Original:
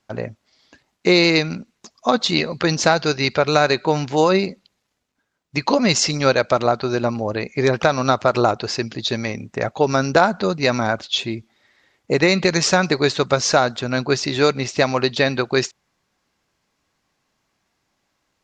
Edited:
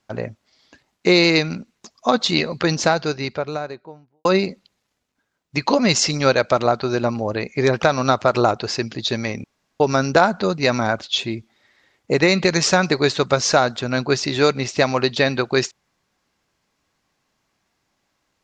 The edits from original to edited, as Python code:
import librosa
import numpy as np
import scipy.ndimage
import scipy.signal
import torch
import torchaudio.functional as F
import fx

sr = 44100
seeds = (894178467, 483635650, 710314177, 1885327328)

y = fx.studio_fade_out(x, sr, start_s=2.5, length_s=1.75)
y = fx.edit(y, sr, fx.room_tone_fill(start_s=9.44, length_s=0.36), tone=tone)